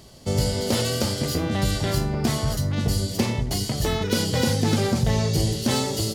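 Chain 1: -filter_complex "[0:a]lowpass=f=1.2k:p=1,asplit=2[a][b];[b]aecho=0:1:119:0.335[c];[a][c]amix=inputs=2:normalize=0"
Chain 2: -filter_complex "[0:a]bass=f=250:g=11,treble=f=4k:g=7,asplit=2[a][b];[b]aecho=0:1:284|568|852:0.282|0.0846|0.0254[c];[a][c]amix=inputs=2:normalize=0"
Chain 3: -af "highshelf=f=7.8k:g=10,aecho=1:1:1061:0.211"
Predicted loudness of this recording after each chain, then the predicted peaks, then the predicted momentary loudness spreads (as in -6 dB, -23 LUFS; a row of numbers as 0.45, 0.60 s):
-24.5, -15.5, -22.5 LUFS; -10.0, -1.0, -7.5 dBFS; 4, 4, 3 LU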